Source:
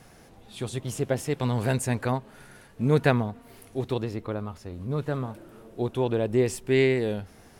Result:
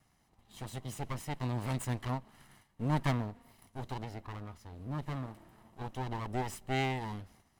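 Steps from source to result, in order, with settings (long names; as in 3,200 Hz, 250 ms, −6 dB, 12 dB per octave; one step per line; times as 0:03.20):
lower of the sound and its delayed copy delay 0.99 ms
noise gate −51 dBFS, range −9 dB
level −8 dB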